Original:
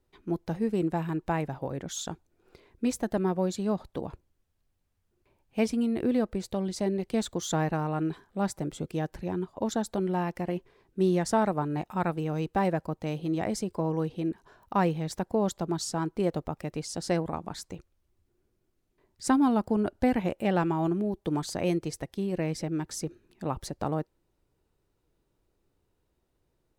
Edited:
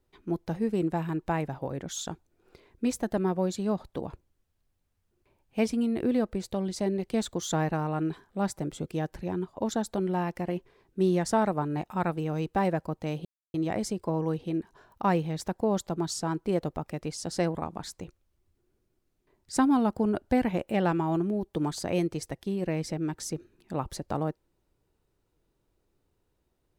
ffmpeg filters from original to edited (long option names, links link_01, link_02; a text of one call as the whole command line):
ffmpeg -i in.wav -filter_complex "[0:a]asplit=2[link_01][link_02];[link_01]atrim=end=13.25,asetpts=PTS-STARTPTS,afade=type=out:start_time=13.246:duration=0.004:curve=hsin,apad=pad_dur=0.29[link_03];[link_02]atrim=start=13.25,asetpts=PTS-STARTPTS,afade=type=in:duration=0.004:curve=hsin[link_04];[link_03][link_04]concat=n=2:v=0:a=1" out.wav